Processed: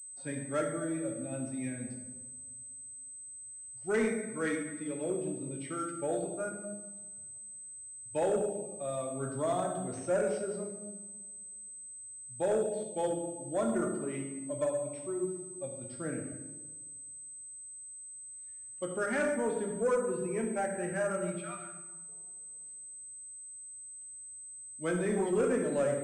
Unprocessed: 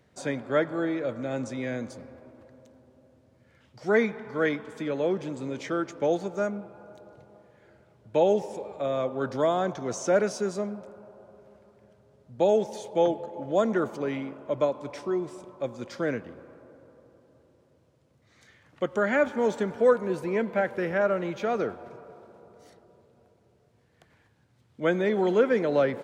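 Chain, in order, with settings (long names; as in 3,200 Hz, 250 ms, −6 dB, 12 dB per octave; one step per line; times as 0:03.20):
spectral dynamics exaggerated over time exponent 1.5
0:21.42–0:22.09: inverse Chebyshev high-pass filter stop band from 530 Hz, stop band 40 dB
on a send at −1 dB: convolution reverb RT60 1.0 s, pre-delay 7 ms
on the sum: soft clipping −17 dBFS, distortion −17 dB
switching amplifier with a slow clock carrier 8,200 Hz
level −5 dB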